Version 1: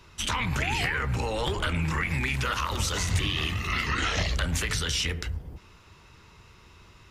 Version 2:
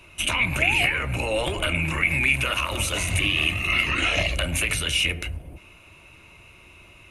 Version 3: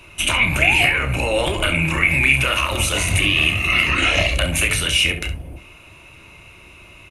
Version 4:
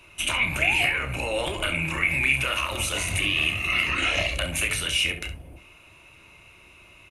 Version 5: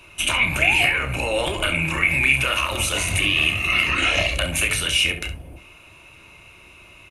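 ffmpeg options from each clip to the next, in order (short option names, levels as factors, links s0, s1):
-af "superequalizer=6b=1.78:8b=2.51:12b=3.55:14b=0.501:16b=3.55"
-af "aecho=1:1:30|67:0.316|0.237,volume=1.78"
-af "lowshelf=f=350:g=-4,volume=0.473"
-af "bandreject=f=2000:w=26,volume=1.68"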